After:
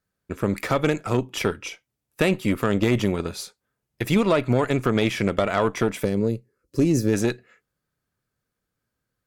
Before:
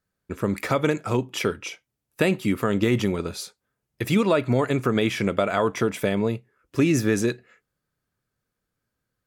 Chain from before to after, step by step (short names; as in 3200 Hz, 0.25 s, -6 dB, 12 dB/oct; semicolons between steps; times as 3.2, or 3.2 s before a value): added harmonics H 6 -22 dB, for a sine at -7 dBFS; spectral gain 6.04–7.14, 580–3900 Hz -11 dB